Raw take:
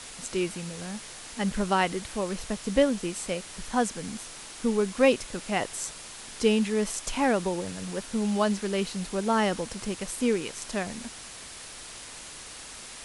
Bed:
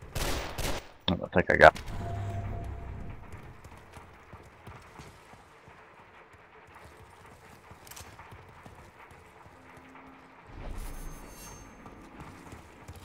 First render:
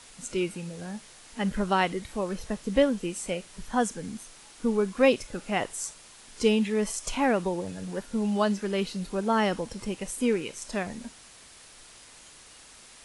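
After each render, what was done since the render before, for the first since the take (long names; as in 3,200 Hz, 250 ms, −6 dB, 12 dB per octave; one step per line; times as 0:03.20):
noise reduction from a noise print 8 dB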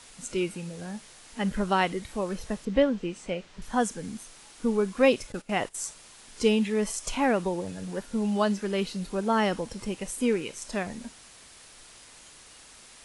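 0:02.65–0:03.62: high-frequency loss of the air 120 metres
0:05.32–0:05.85: noise gate −41 dBFS, range −14 dB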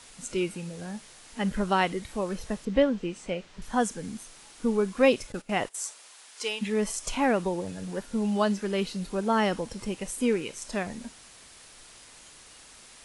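0:05.67–0:06.61: high-pass filter 350 Hz → 950 Hz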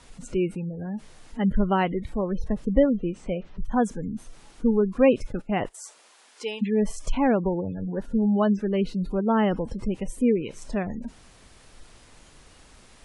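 gate on every frequency bin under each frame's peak −25 dB strong
spectral tilt −2.5 dB per octave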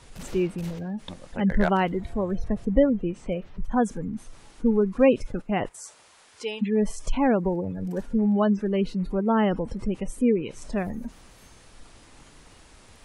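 mix in bed −11.5 dB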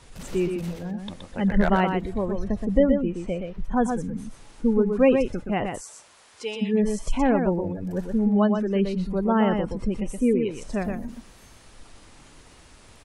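single-tap delay 122 ms −5.5 dB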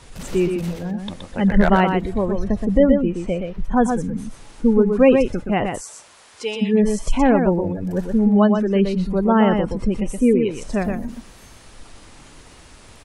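level +5.5 dB
brickwall limiter −3 dBFS, peak gain reduction 3 dB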